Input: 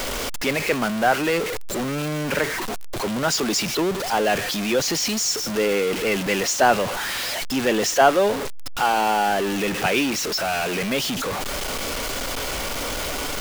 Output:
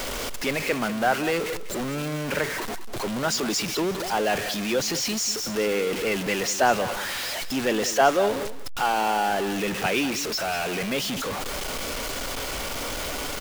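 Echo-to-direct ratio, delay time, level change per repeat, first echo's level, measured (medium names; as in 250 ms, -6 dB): -13.5 dB, 194 ms, no regular repeats, -13.5 dB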